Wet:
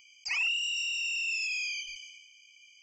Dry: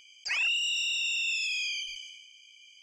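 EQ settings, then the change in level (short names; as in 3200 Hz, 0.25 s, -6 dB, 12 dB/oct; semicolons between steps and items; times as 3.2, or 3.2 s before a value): fixed phaser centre 2400 Hz, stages 8; 0.0 dB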